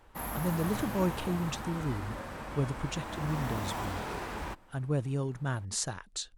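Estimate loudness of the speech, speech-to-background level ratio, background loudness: -34.5 LUFS, 4.0 dB, -38.5 LUFS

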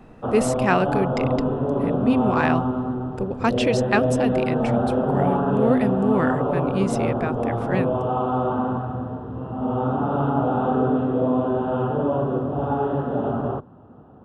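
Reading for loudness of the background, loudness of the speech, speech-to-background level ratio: -23.5 LUFS, -25.5 LUFS, -2.0 dB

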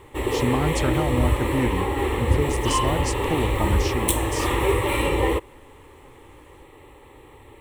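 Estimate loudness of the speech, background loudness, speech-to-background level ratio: -28.5 LUFS, -23.5 LUFS, -5.0 dB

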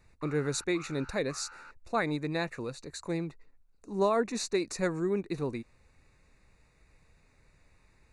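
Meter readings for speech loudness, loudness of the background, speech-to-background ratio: -32.5 LUFS, -50.0 LUFS, 17.5 dB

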